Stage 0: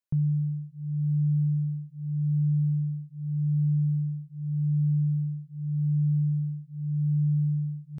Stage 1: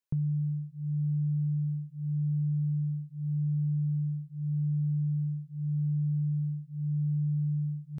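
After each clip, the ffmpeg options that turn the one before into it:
-af "acompressor=threshold=-27dB:ratio=6"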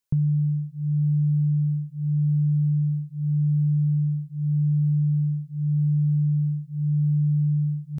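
-af "bass=f=250:g=4,treble=f=4k:g=4,volume=4dB"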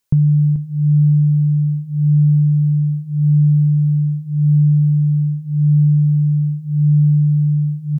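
-af "aecho=1:1:435:0.237,volume=9dB"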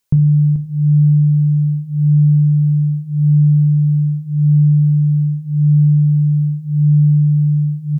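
-af "bandreject=f=61.24:t=h:w=4,bandreject=f=122.48:t=h:w=4,bandreject=f=183.72:t=h:w=4,bandreject=f=244.96:t=h:w=4,bandreject=f=306.2:t=h:w=4,bandreject=f=367.44:t=h:w=4,bandreject=f=428.68:t=h:w=4,bandreject=f=489.92:t=h:w=4,bandreject=f=551.16:t=h:w=4,bandreject=f=612.4:t=h:w=4,bandreject=f=673.64:t=h:w=4,bandreject=f=734.88:t=h:w=4,bandreject=f=796.12:t=h:w=4,bandreject=f=857.36:t=h:w=4,bandreject=f=918.6:t=h:w=4,bandreject=f=979.84:t=h:w=4,bandreject=f=1.04108k:t=h:w=4,bandreject=f=1.10232k:t=h:w=4,bandreject=f=1.16356k:t=h:w=4,bandreject=f=1.2248k:t=h:w=4,bandreject=f=1.28604k:t=h:w=4,bandreject=f=1.34728k:t=h:w=4,bandreject=f=1.40852k:t=h:w=4,bandreject=f=1.46976k:t=h:w=4,bandreject=f=1.531k:t=h:w=4,bandreject=f=1.59224k:t=h:w=4,bandreject=f=1.65348k:t=h:w=4,bandreject=f=1.71472k:t=h:w=4,bandreject=f=1.77596k:t=h:w=4,bandreject=f=1.8372k:t=h:w=4,bandreject=f=1.89844k:t=h:w=4,bandreject=f=1.95968k:t=h:w=4,volume=1.5dB"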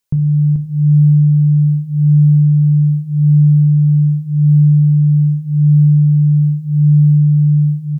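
-af "dynaudnorm=f=110:g=5:m=11.5dB,volume=-3.5dB"

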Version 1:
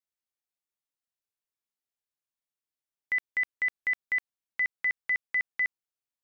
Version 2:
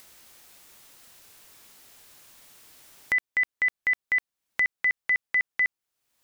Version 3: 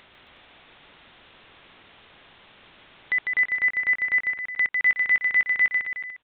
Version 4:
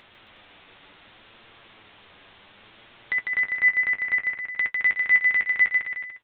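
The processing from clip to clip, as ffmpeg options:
-af "acompressor=mode=upward:threshold=-30dB:ratio=2.5,volume=4dB"
-af "aresample=8000,asoftclip=type=tanh:threshold=-24dB,aresample=44100,aecho=1:1:150|270|366|442.8|504.2:0.631|0.398|0.251|0.158|0.1,volume=6dB"
-af "flanger=delay=8.6:depth=1.9:regen=45:speed=0.67:shape=sinusoidal,volume=4.5dB"

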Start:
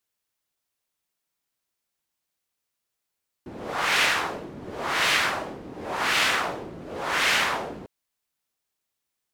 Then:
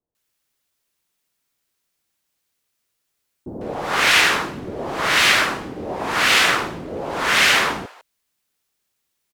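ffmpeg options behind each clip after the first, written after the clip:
-filter_complex "[0:a]acrossover=split=810[a][b];[b]adelay=150[c];[a][c]amix=inputs=2:normalize=0,volume=7.5dB"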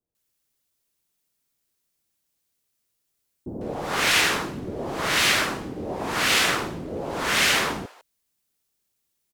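-af "equalizer=f=1.6k:w=0.36:g=-6.5"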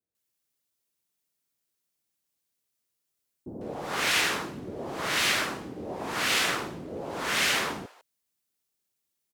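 -af "highpass=f=93:p=1,volume=-5dB"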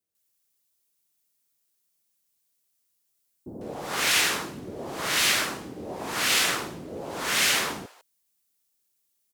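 -af "highshelf=f=4.5k:g=8"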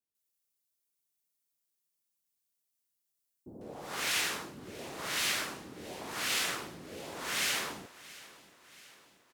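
-af "aecho=1:1:678|1356|2034|2712|3390:0.112|0.0617|0.0339|0.0187|0.0103,volume=-9dB"

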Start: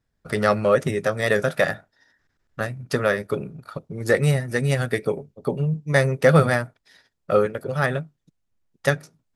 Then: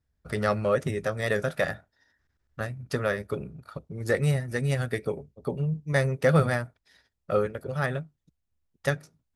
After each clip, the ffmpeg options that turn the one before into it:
-af "equalizer=f=65:t=o:w=0.87:g=14.5,volume=-6.5dB"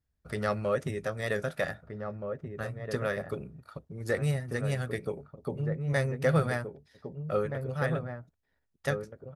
-filter_complex "[0:a]asplit=2[a][b];[b]adelay=1574,volume=-6dB,highshelf=f=4k:g=-35.4[c];[a][c]amix=inputs=2:normalize=0,volume=-4.5dB"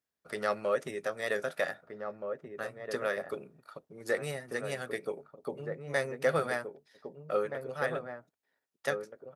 -af "highpass=330"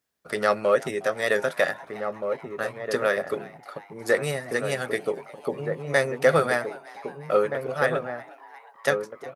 -filter_complex "[0:a]asplit=6[a][b][c][d][e][f];[b]adelay=360,afreqshift=150,volume=-21.5dB[g];[c]adelay=720,afreqshift=300,volume=-25.4dB[h];[d]adelay=1080,afreqshift=450,volume=-29.3dB[i];[e]adelay=1440,afreqshift=600,volume=-33.1dB[j];[f]adelay=1800,afreqshift=750,volume=-37dB[k];[a][g][h][i][j][k]amix=inputs=6:normalize=0,volume=9dB"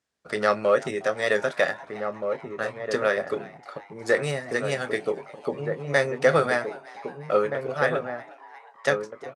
-filter_complex "[0:a]lowpass=f=8.5k:w=0.5412,lowpass=f=8.5k:w=1.3066,asplit=2[a][b];[b]adelay=28,volume=-14dB[c];[a][c]amix=inputs=2:normalize=0"

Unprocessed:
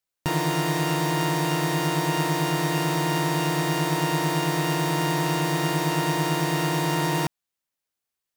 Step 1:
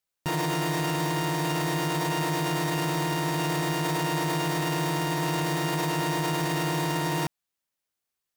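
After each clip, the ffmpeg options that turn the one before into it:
-af "alimiter=limit=-19.5dB:level=0:latency=1:release=11"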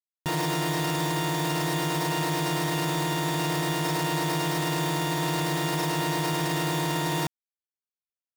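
-af "acrusher=bits=5:mix=0:aa=0.000001"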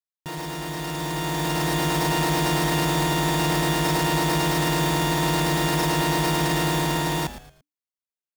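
-filter_complex "[0:a]dynaudnorm=f=240:g=11:m=10dB,asplit=4[a][b][c][d];[b]adelay=113,afreqshift=-99,volume=-13dB[e];[c]adelay=226,afreqshift=-198,volume=-22.4dB[f];[d]adelay=339,afreqshift=-297,volume=-31.7dB[g];[a][e][f][g]amix=inputs=4:normalize=0,volume=-5.5dB"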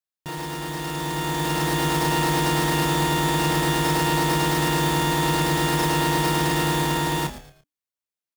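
-filter_complex "[0:a]asplit=2[a][b];[b]adelay=28,volume=-8dB[c];[a][c]amix=inputs=2:normalize=0"

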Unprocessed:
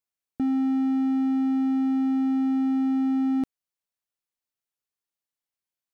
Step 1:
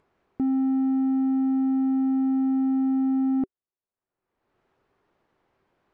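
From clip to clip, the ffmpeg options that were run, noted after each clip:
-af "lowpass=1.2k,equalizer=f=380:w=4.8:g=7,acompressor=mode=upward:threshold=-47dB:ratio=2.5"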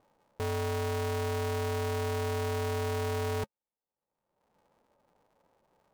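-af "alimiter=level_in=0.5dB:limit=-24dB:level=0:latency=1:release=19,volume=-0.5dB,lowpass=f=710:t=q:w=4.9,aeval=exprs='val(0)*sgn(sin(2*PI*170*n/s))':c=same,volume=-4.5dB"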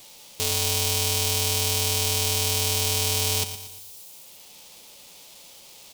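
-filter_complex "[0:a]aeval=exprs='val(0)+0.5*0.00188*sgn(val(0))':c=same,aexciter=amount=7.6:drive=7:freq=2.5k,asplit=2[a][b];[b]aecho=0:1:116|232|348|464|580:0.282|0.135|0.0649|0.0312|0.015[c];[a][c]amix=inputs=2:normalize=0"

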